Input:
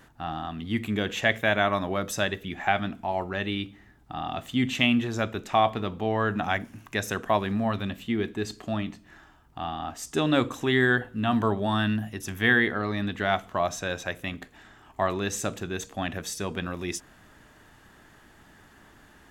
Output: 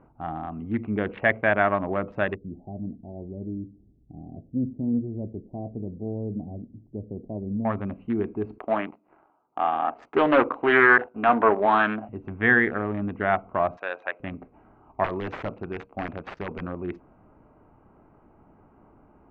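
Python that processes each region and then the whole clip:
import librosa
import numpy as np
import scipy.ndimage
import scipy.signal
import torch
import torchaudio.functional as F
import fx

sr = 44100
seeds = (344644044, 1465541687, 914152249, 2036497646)

y = fx.chain(x, sr, fx.gaussian_blur(sigma=21.0),
    fx.doppler_dist(depth_ms=0.19), at=(2.35, 7.65))
y = fx.chain(y, sr, fx.highpass(hz=420.0, slope=12),
    fx.leveller(passes=2),
    fx.doppler_dist(depth_ms=0.22), at=(8.58, 12.09))
y = fx.chain(y, sr, fx.highpass(hz=620.0, slope=12),
    fx.high_shelf(hz=2500.0, db=7.5), at=(13.77, 14.2))
y = fx.chain(y, sr, fx.law_mismatch(coded='A'),
    fx.high_shelf(hz=2900.0, db=11.5),
    fx.overflow_wrap(gain_db=19.5), at=(15.04, 16.61))
y = fx.wiener(y, sr, points=25)
y = scipy.signal.sosfilt(scipy.signal.butter(4, 2100.0, 'lowpass', fs=sr, output='sos'), y)
y = fx.low_shelf(y, sr, hz=230.0, db=-5.5)
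y = F.gain(torch.from_numpy(y), 4.0).numpy()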